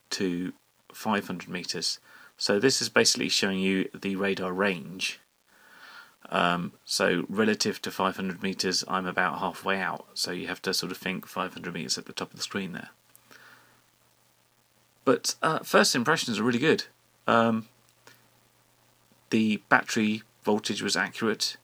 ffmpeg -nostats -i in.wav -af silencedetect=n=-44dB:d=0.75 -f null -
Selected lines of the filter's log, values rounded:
silence_start: 13.53
silence_end: 15.07 | silence_duration: 1.54
silence_start: 18.14
silence_end: 19.32 | silence_duration: 1.17